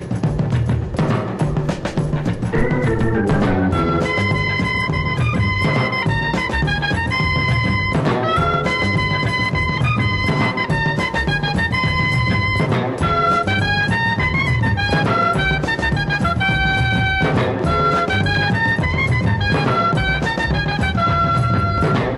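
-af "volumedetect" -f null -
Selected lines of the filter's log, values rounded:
mean_volume: -17.6 dB
max_volume: -4.7 dB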